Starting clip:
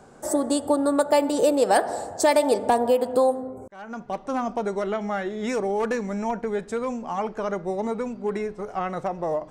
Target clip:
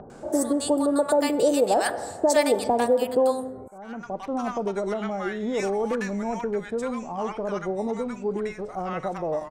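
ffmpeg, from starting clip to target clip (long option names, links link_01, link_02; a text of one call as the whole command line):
ffmpeg -i in.wav -filter_complex "[0:a]acrossover=split=940[link_01][link_02];[link_02]adelay=100[link_03];[link_01][link_03]amix=inputs=2:normalize=0,acompressor=mode=upward:threshold=-37dB:ratio=2.5" out.wav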